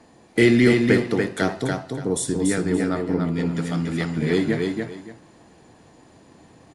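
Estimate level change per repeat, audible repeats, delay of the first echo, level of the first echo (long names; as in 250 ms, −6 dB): −13.0 dB, 2, 287 ms, −4.0 dB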